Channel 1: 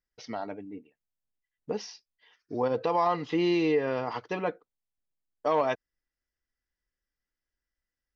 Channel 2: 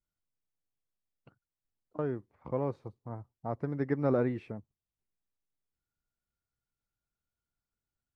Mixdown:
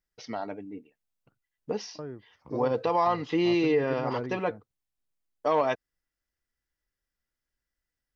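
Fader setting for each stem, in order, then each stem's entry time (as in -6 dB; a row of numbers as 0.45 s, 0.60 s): +1.0 dB, -6.0 dB; 0.00 s, 0.00 s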